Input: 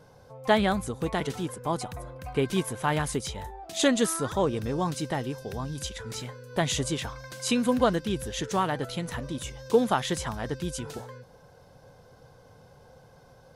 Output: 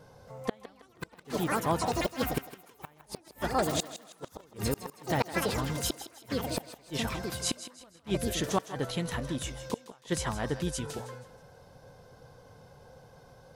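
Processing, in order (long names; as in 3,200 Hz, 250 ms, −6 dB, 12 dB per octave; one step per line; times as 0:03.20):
delay with pitch and tempo change per echo 273 ms, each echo +5 semitones, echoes 3
gate with flip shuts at −16 dBFS, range −35 dB
feedback echo with a high-pass in the loop 160 ms, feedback 37%, high-pass 380 Hz, level −12.5 dB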